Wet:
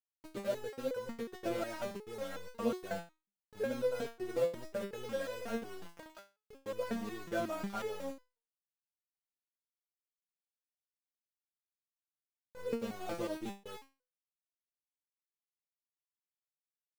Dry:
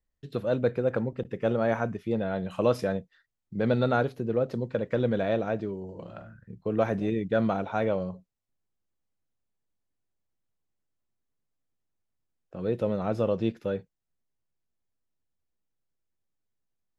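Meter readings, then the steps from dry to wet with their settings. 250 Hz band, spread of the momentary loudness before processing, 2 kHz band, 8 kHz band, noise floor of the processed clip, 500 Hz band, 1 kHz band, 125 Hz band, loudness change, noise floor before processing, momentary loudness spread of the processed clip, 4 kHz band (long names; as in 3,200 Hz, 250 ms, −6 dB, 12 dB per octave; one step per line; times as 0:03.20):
−12.0 dB, 12 LU, −9.0 dB, can't be measured, below −85 dBFS, −10.0 dB, −10.5 dB, −20.0 dB, −10.5 dB, −81 dBFS, 15 LU, −4.0 dB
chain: in parallel at 0 dB: downward compressor 8 to 1, threshold −37 dBFS, peak gain reduction 18.5 dB
on the sum: centre clipping without the shift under −29.5 dBFS
step-sequenced resonator 5.5 Hz 170–500 Hz
level +2.5 dB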